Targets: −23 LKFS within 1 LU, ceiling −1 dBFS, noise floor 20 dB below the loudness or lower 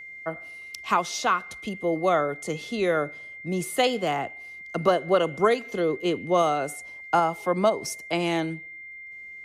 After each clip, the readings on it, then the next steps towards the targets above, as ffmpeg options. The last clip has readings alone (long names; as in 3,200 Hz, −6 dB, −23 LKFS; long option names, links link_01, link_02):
interfering tone 2,100 Hz; level of the tone −39 dBFS; integrated loudness −26.0 LKFS; sample peak −10.0 dBFS; target loudness −23.0 LKFS
→ -af "bandreject=frequency=2100:width=30"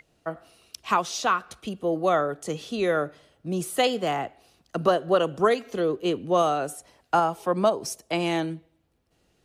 interfering tone none found; integrated loudness −25.5 LKFS; sample peak −10.0 dBFS; target loudness −23.0 LKFS
→ -af "volume=2.5dB"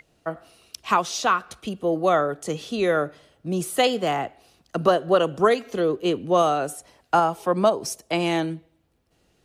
integrated loudness −23.0 LKFS; sample peak −7.5 dBFS; background noise floor −66 dBFS